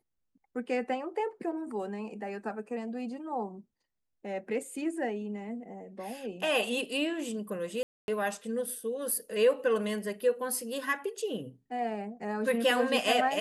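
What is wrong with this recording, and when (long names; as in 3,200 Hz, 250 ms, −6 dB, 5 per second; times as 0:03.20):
0:07.83–0:08.08: drop-out 251 ms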